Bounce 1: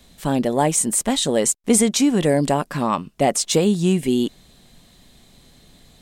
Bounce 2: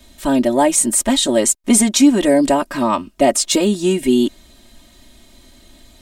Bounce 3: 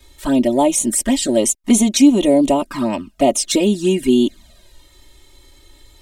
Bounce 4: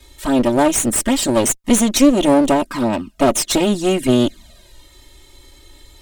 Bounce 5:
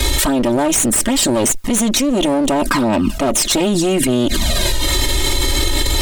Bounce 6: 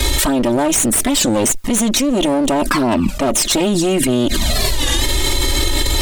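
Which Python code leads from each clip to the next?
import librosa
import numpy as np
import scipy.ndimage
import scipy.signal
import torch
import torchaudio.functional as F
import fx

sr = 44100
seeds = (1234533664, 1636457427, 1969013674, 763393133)

y1 = x + 0.95 * np.pad(x, (int(3.2 * sr / 1000.0), 0))[:len(x)]
y1 = y1 * librosa.db_to_amplitude(1.5)
y2 = fx.env_flanger(y1, sr, rest_ms=2.4, full_db=-11.0)
y2 = y2 * librosa.db_to_amplitude(1.0)
y3 = fx.clip_asym(y2, sr, top_db=-24.5, bottom_db=-3.5)
y3 = y3 * librosa.db_to_amplitude(3.0)
y4 = fx.env_flatten(y3, sr, amount_pct=100)
y4 = y4 * librosa.db_to_amplitude(-7.5)
y5 = fx.record_warp(y4, sr, rpm=33.33, depth_cents=160.0)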